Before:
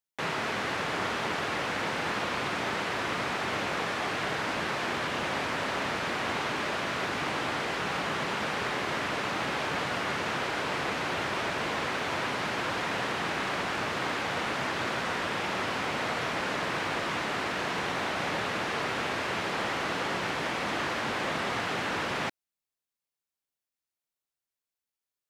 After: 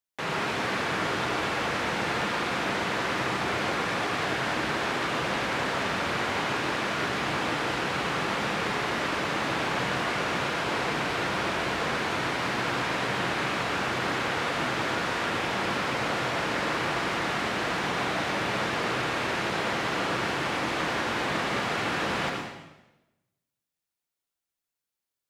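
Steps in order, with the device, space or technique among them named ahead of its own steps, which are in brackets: bathroom (reverb RT60 1.0 s, pre-delay 72 ms, DRR 1 dB)

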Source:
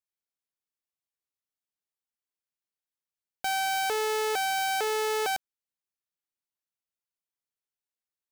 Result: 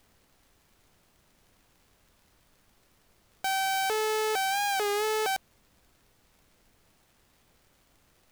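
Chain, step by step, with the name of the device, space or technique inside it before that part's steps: warped LP (record warp 33 1/3 rpm, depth 100 cents; crackle; pink noise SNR 31 dB)

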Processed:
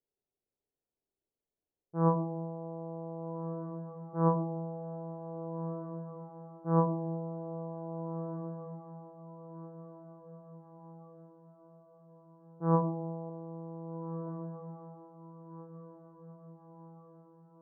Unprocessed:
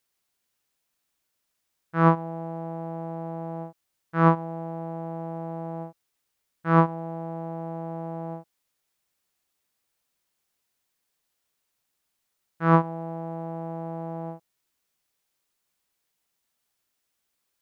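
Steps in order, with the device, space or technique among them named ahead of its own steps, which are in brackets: low-pass opened by the level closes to 710 Hz, open at -21 dBFS; 13.29–14.27 bell 640 Hz -6 dB 1 oct; under water (LPF 930 Hz 24 dB/oct; bell 410 Hz +9 dB 0.42 oct); diffused feedback echo 1.645 s, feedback 48%, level -12 dB; shoebox room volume 110 m³, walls mixed, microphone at 0.38 m; gain -7.5 dB

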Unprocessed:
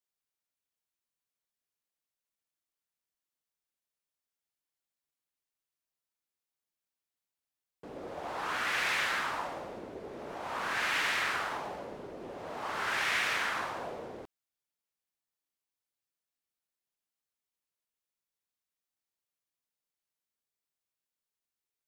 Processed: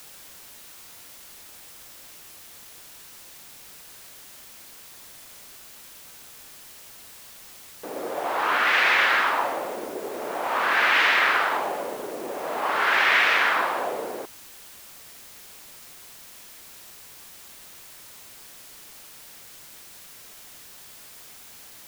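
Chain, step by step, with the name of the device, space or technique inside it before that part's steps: dictaphone (BPF 320–3500 Hz; AGC gain up to 12 dB; wow and flutter; white noise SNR 17 dB)

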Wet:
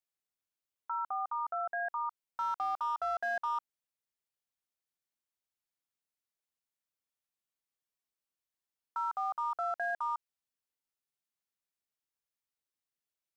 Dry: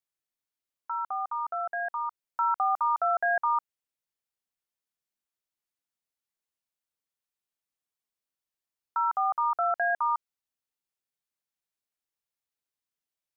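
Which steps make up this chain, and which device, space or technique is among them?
clipper into limiter (hard clip -20.5 dBFS, distortion -27 dB; limiter -24.5 dBFS, peak gain reduction 4 dB); gain -3.5 dB

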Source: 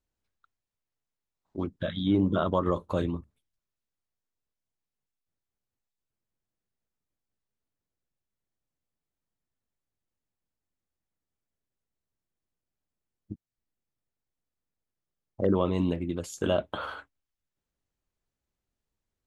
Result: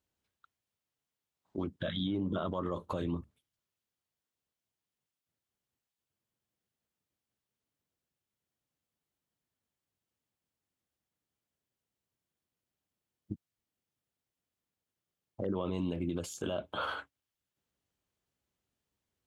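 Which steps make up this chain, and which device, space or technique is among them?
15.65–16.85 notch 1900 Hz, Q 7.7; broadcast voice chain (HPF 75 Hz; de-esser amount 100%; compressor, threshold -27 dBFS, peak gain reduction 8 dB; bell 3100 Hz +3.5 dB 0.37 oct; limiter -26.5 dBFS, peak gain reduction 9 dB); gain +1.5 dB

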